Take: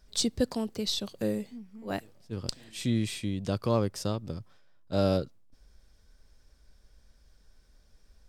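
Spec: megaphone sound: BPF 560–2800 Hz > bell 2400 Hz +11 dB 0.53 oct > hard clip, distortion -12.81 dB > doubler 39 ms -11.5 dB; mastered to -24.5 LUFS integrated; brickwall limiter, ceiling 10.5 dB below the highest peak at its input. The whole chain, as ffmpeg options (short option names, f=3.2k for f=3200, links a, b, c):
-filter_complex "[0:a]alimiter=limit=-21.5dB:level=0:latency=1,highpass=560,lowpass=2.8k,equalizer=f=2.4k:t=o:w=0.53:g=11,asoftclip=type=hard:threshold=-33.5dB,asplit=2[a][b];[b]adelay=39,volume=-11.5dB[c];[a][c]amix=inputs=2:normalize=0,volume=17dB"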